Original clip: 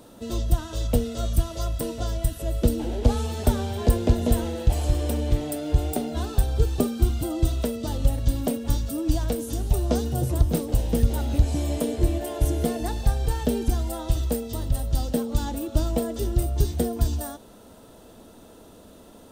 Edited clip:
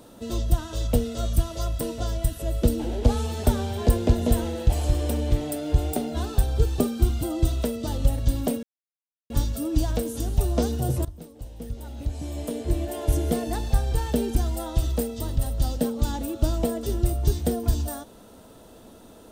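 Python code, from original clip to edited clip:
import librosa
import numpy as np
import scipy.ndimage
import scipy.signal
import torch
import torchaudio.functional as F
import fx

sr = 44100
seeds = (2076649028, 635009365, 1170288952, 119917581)

y = fx.edit(x, sr, fx.insert_silence(at_s=8.63, length_s=0.67),
    fx.fade_in_from(start_s=10.38, length_s=2.03, curve='qua', floor_db=-18.5), tone=tone)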